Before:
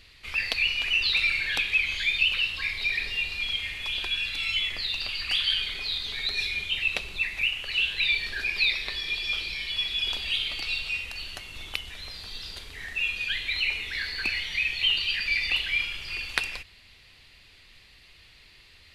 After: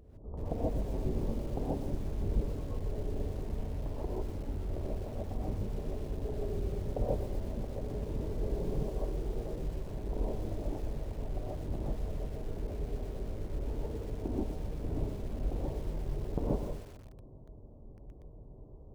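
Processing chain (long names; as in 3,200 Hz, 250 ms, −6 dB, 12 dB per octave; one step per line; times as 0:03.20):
spectral tilt +2.5 dB per octave
in parallel at −3 dB: asymmetric clip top −16 dBFS
on the sum: Gaussian smoothing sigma 17 samples
reverb whose tail is shaped and stops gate 180 ms rising, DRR −7 dB
feedback echo at a low word length 121 ms, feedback 55%, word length 9 bits, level −10.5 dB
level +8 dB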